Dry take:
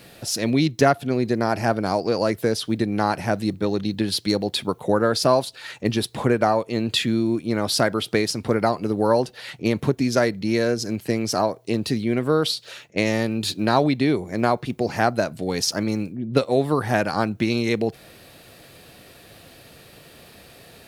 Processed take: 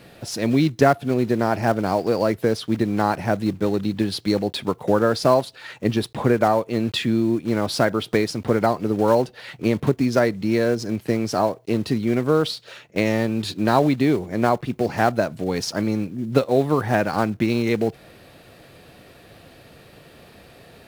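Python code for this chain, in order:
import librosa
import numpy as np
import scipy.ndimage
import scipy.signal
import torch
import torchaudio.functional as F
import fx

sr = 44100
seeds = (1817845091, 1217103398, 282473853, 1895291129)

y = fx.block_float(x, sr, bits=5)
y = fx.high_shelf(y, sr, hz=3500.0, db=-9.5)
y = y * librosa.db_to_amplitude(1.5)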